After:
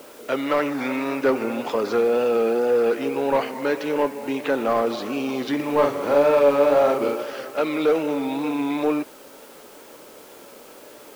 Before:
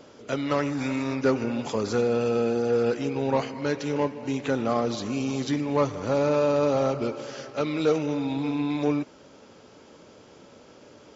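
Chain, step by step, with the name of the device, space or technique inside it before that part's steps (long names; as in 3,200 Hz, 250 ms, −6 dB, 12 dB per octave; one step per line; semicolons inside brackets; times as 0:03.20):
tape answering machine (band-pass filter 330–3,100 Hz; soft clipping −18.5 dBFS, distortion −17 dB; tape wow and flutter; white noise bed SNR 27 dB)
0:05.55–0:07.24: double-tracking delay 42 ms −3 dB
level +7 dB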